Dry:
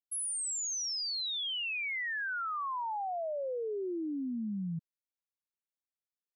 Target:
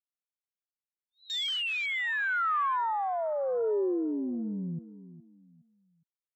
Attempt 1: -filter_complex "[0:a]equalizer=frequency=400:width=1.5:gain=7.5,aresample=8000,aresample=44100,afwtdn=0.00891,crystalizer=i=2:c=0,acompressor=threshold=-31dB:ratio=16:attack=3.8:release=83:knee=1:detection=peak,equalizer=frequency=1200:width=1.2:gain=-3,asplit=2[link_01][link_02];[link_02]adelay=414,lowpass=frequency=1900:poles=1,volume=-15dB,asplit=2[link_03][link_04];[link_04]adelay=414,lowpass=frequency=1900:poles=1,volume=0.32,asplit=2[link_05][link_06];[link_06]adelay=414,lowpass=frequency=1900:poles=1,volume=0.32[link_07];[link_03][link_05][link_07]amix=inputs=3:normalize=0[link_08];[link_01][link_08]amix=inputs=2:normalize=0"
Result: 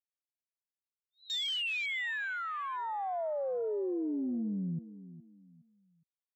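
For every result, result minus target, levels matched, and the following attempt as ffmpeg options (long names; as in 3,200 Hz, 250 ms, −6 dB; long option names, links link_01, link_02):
downward compressor: peak gain reduction +5 dB; 1,000 Hz band −3.0 dB
-filter_complex "[0:a]equalizer=frequency=400:width=1.5:gain=7.5,aresample=8000,aresample=44100,afwtdn=0.00891,crystalizer=i=2:c=0,equalizer=frequency=1200:width=1.2:gain=-3,asplit=2[link_01][link_02];[link_02]adelay=414,lowpass=frequency=1900:poles=1,volume=-15dB,asplit=2[link_03][link_04];[link_04]adelay=414,lowpass=frequency=1900:poles=1,volume=0.32,asplit=2[link_05][link_06];[link_06]adelay=414,lowpass=frequency=1900:poles=1,volume=0.32[link_07];[link_03][link_05][link_07]amix=inputs=3:normalize=0[link_08];[link_01][link_08]amix=inputs=2:normalize=0"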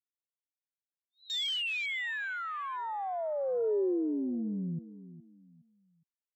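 1,000 Hz band −4.0 dB
-filter_complex "[0:a]equalizer=frequency=400:width=1.5:gain=7.5,aresample=8000,aresample=44100,afwtdn=0.00891,crystalizer=i=2:c=0,equalizer=frequency=1200:width=1.2:gain=7,asplit=2[link_01][link_02];[link_02]adelay=414,lowpass=frequency=1900:poles=1,volume=-15dB,asplit=2[link_03][link_04];[link_04]adelay=414,lowpass=frequency=1900:poles=1,volume=0.32,asplit=2[link_05][link_06];[link_06]adelay=414,lowpass=frequency=1900:poles=1,volume=0.32[link_07];[link_03][link_05][link_07]amix=inputs=3:normalize=0[link_08];[link_01][link_08]amix=inputs=2:normalize=0"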